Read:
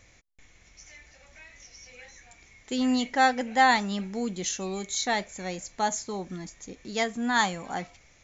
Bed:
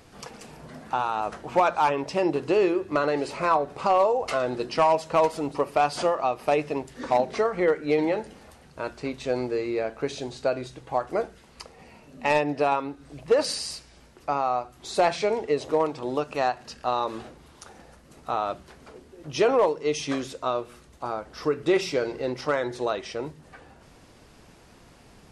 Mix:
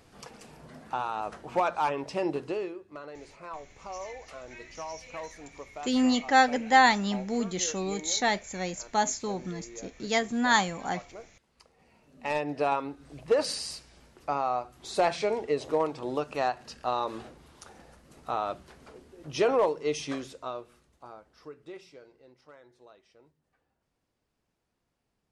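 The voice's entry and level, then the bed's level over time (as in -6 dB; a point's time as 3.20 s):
3.15 s, +1.0 dB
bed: 2.38 s -5.5 dB
2.84 s -19 dB
11.40 s -19 dB
12.69 s -3.5 dB
19.90 s -3.5 dB
22.25 s -28 dB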